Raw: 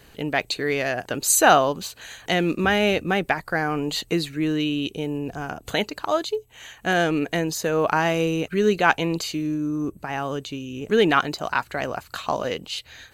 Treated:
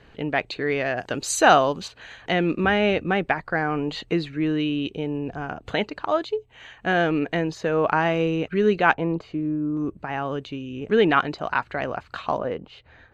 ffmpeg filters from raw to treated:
-af "asetnsamples=n=441:p=0,asendcmd='0.97 lowpass f 5300;1.88 lowpass f 2900;8.94 lowpass f 1200;9.77 lowpass f 2900;12.38 lowpass f 1300',lowpass=2.9k"

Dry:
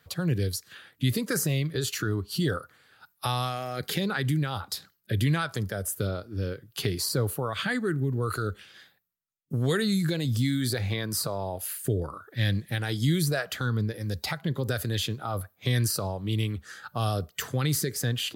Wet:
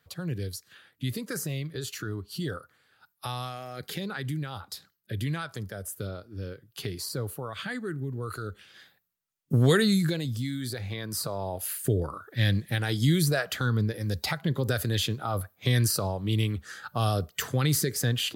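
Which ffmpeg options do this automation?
-af "volume=13.5dB,afade=t=in:st=8.51:d=1.06:silence=0.251189,afade=t=out:st=9.57:d=0.78:silence=0.251189,afade=t=in:st=10.89:d=0.88:silence=0.421697"

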